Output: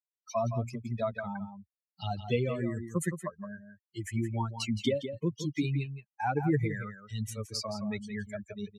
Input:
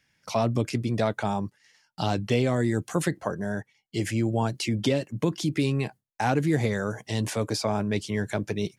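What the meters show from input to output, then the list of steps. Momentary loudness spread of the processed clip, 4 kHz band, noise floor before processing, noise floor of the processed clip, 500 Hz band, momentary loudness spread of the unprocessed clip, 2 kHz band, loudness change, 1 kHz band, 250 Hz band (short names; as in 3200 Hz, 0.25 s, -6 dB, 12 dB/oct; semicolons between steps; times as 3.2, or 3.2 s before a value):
11 LU, -6.5 dB, -73 dBFS, under -85 dBFS, -7.0 dB, 7 LU, -7.0 dB, -6.5 dB, -6.0 dB, -7.0 dB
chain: per-bin expansion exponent 3; outdoor echo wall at 29 m, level -9 dB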